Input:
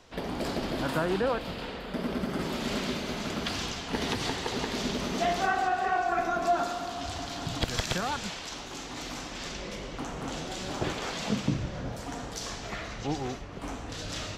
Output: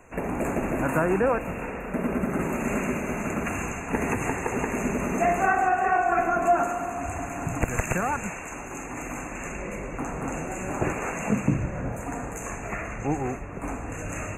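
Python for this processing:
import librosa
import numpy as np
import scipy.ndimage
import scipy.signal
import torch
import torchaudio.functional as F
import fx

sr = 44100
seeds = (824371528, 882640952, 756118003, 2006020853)

y = fx.brickwall_bandstop(x, sr, low_hz=2800.0, high_hz=6200.0)
y = y * 10.0 ** (5.0 / 20.0)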